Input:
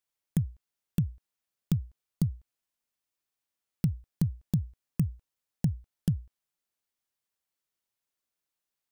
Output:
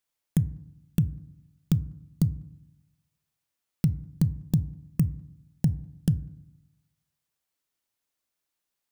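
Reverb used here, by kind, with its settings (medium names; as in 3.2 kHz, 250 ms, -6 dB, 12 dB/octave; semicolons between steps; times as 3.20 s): FDN reverb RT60 0.81 s, low-frequency decay 1.35×, high-frequency decay 0.35×, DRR 16 dB; trim +3.5 dB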